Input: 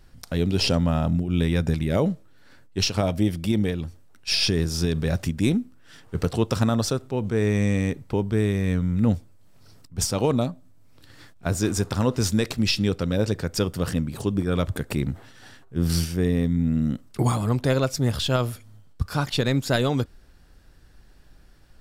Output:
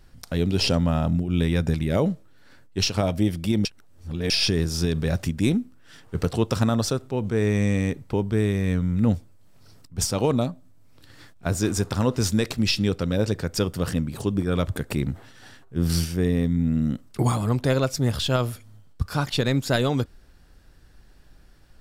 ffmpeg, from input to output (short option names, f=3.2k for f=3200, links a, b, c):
-filter_complex "[0:a]asplit=3[a][b][c];[a]atrim=end=3.652[d];[b]atrim=start=3.648:end=4.302,asetpts=PTS-STARTPTS,areverse[e];[c]atrim=start=4.298[f];[d][e]acrossfade=d=0.004:c1=hsin:c2=hsin[g];[g][f]acrossfade=d=0.004:c1=hsin:c2=hsin"